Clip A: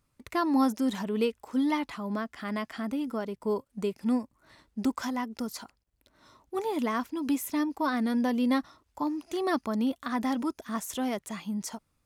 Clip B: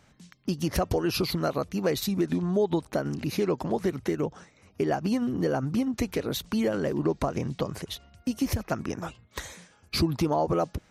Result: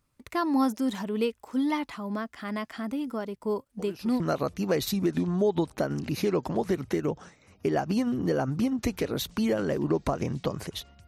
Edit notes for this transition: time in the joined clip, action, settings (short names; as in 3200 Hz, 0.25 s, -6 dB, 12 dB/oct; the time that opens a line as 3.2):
clip A
3.79 add clip B from 0.94 s 0.41 s -17 dB
4.2 switch to clip B from 1.35 s